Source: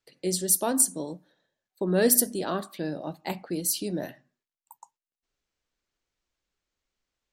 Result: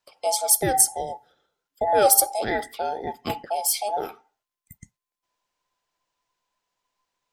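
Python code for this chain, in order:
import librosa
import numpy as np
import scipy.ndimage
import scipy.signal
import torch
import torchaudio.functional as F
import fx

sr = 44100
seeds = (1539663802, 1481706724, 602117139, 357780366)

y = fx.band_invert(x, sr, width_hz=1000)
y = y * librosa.db_to_amplitude(4.0)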